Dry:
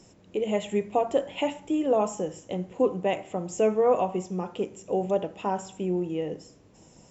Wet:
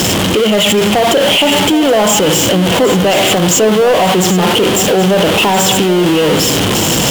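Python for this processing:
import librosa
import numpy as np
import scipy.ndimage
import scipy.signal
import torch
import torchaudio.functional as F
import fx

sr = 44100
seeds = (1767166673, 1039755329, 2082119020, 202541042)

p1 = x + 0.5 * 10.0 ** (-26.0 / 20.0) * np.sign(x)
p2 = scipy.signal.sosfilt(scipy.signal.butter(2, 61.0, 'highpass', fs=sr, output='sos'), p1)
p3 = fx.peak_eq(p2, sr, hz=3100.0, db=12.0, octaves=0.41)
p4 = fx.over_compress(p3, sr, threshold_db=-28.0, ratio=-1.0)
p5 = p3 + (p4 * 10.0 ** (2.0 / 20.0))
p6 = fx.fold_sine(p5, sr, drive_db=6, ceiling_db=-5.5)
y = p6 + fx.echo_single(p6, sr, ms=775, db=-12.5, dry=0)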